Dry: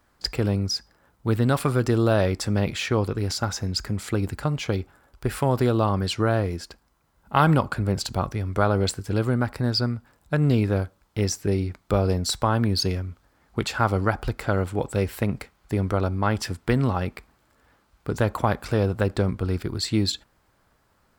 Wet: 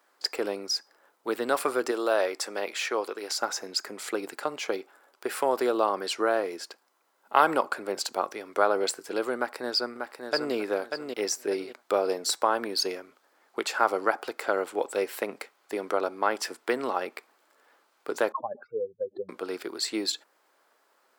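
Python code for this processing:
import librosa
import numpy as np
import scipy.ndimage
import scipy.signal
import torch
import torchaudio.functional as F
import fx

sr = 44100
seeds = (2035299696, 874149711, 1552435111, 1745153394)

y = fx.highpass(x, sr, hz=450.0, slope=6, at=(1.91, 3.38))
y = fx.echo_throw(y, sr, start_s=9.36, length_s=1.18, ms=590, feedback_pct=30, wet_db=-6.0)
y = fx.spec_expand(y, sr, power=3.9, at=(18.32, 19.29))
y = scipy.signal.sosfilt(scipy.signal.butter(4, 360.0, 'highpass', fs=sr, output='sos'), y)
y = fx.dynamic_eq(y, sr, hz=3400.0, q=1.8, threshold_db=-42.0, ratio=4.0, max_db=-4)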